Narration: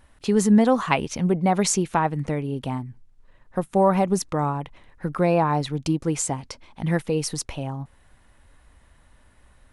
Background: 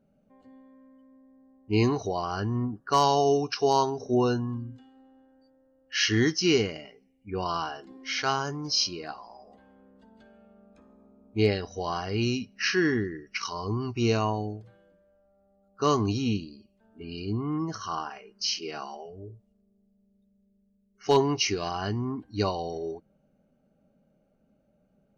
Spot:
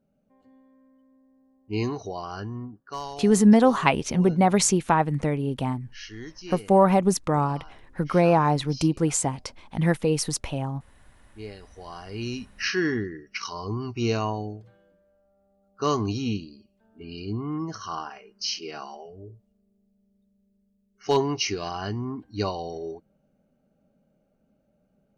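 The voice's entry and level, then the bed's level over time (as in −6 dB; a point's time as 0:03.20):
2.95 s, +1.0 dB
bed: 0:02.40 −4 dB
0:03.27 −16.5 dB
0:11.41 −16.5 dB
0:12.59 −0.5 dB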